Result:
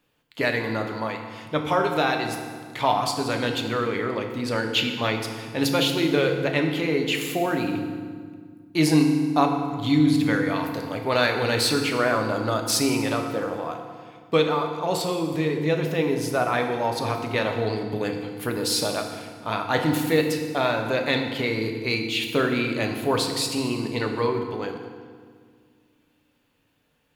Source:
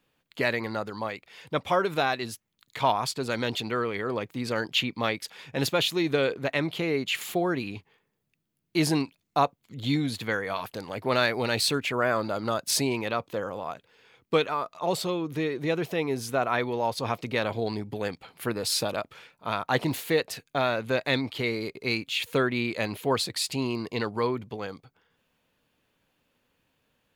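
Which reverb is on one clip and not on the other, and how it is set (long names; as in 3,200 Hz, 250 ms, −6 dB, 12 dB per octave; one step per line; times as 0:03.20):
feedback delay network reverb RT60 1.8 s, low-frequency decay 1.45×, high-frequency decay 0.75×, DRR 3 dB
level +1.5 dB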